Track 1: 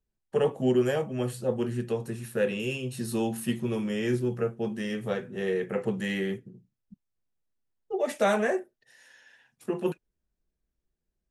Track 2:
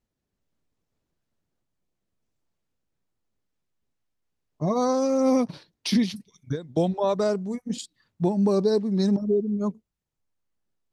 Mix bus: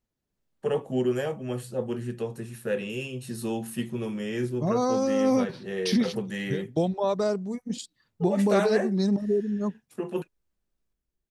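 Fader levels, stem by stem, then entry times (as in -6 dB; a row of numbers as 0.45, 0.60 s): -2.0, -2.0 dB; 0.30, 0.00 s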